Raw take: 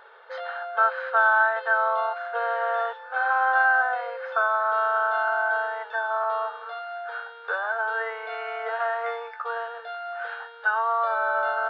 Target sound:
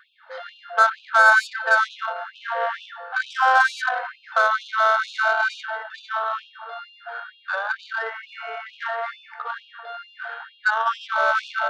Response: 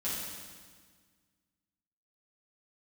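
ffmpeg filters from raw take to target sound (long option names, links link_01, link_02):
-filter_complex "[0:a]asplit=2[link_01][link_02];[1:a]atrim=start_sample=2205,lowshelf=frequency=440:gain=-11[link_03];[link_02][link_03]afir=irnorm=-1:irlink=0,volume=-10.5dB[link_04];[link_01][link_04]amix=inputs=2:normalize=0,acontrast=83,aeval=exprs='0.708*(cos(1*acos(clip(val(0)/0.708,-1,1)))-cos(1*PI/2))+0.126*(cos(3*acos(clip(val(0)/0.708,-1,1)))-cos(3*PI/2))+0.0112*(cos(5*acos(clip(val(0)/0.708,-1,1)))-cos(5*PI/2))+0.0158*(cos(7*acos(clip(val(0)/0.708,-1,1)))-cos(7*PI/2))':channel_layout=same,afftfilt=real='re*gte(b*sr/1024,400*pow(2500/400,0.5+0.5*sin(2*PI*2.2*pts/sr)))':imag='im*gte(b*sr/1024,400*pow(2500/400,0.5+0.5*sin(2*PI*2.2*pts/sr)))':win_size=1024:overlap=0.75"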